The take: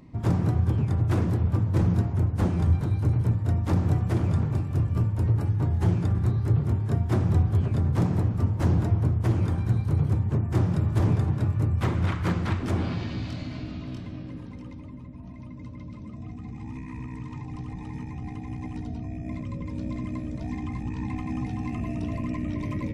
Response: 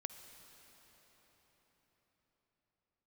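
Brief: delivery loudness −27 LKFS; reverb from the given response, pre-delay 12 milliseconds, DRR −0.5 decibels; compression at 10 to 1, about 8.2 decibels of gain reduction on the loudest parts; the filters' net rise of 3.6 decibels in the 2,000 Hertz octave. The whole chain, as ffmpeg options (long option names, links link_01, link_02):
-filter_complex "[0:a]equalizer=frequency=2000:width_type=o:gain=4.5,acompressor=threshold=-26dB:ratio=10,asplit=2[link_01][link_02];[1:a]atrim=start_sample=2205,adelay=12[link_03];[link_02][link_03]afir=irnorm=-1:irlink=0,volume=3.5dB[link_04];[link_01][link_04]amix=inputs=2:normalize=0,volume=1.5dB"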